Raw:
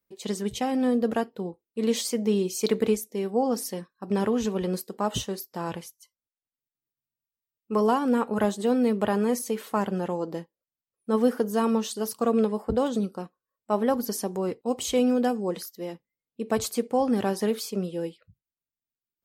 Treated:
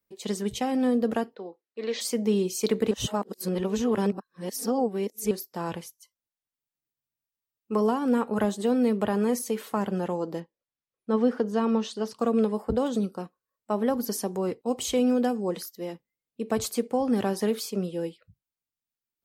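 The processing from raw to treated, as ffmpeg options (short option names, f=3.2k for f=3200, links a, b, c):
-filter_complex "[0:a]asplit=3[a][b][c];[a]afade=t=out:st=1.34:d=0.02[d];[b]highpass=460,equalizer=f=930:t=q:w=4:g=-4,equalizer=f=1.8k:t=q:w=4:g=5,equalizer=f=3.1k:t=q:w=4:g=-5,lowpass=f=4.9k:w=0.5412,lowpass=f=4.9k:w=1.3066,afade=t=in:st=1.34:d=0.02,afade=t=out:st=2:d=0.02[e];[c]afade=t=in:st=2:d=0.02[f];[d][e][f]amix=inputs=3:normalize=0,asettb=1/sr,asplit=3[g][h][i];[g]atrim=end=10.404[j];[h]atrim=start=10.4:end=12.19,asetpts=PTS-STARTPTS,afade=t=in:d=0.004:c=qsin,afade=t=out:st=1.786:d=0.004:c=qsin,lowpass=4.7k[k];[i]atrim=start=12.186[l];[j][k]acrossfade=d=0.004:c1=hsin:c2=qsin[m];[m][l]acrossfade=d=0.004:c1=qsin:c2=hsin,asplit=3[n][o][p];[n]atrim=end=2.912[q];[o]atrim=start=2.908:end=5.312,asetpts=PTS-STARTPTS,areverse[r];[p]atrim=start=5.308[s];[q][r]acrossfade=d=0.004:c1=hsin:c2=hsin[t];[t][s]acrossfade=d=0.004:c1=hsin:c2=hsin,acrossover=split=390[u][v];[v]acompressor=threshold=-25dB:ratio=6[w];[u][w]amix=inputs=2:normalize=0"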